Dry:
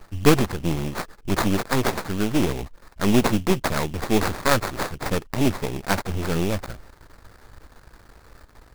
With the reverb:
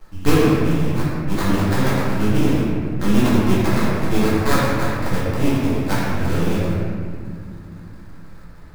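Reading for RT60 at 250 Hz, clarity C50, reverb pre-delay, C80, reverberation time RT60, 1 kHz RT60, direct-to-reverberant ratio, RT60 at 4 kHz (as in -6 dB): 4.0 s, -3.0 dB, 4 ms, -0.5 dB, 2.2 s, 1.8 s, -8.5 dB, 1.2 s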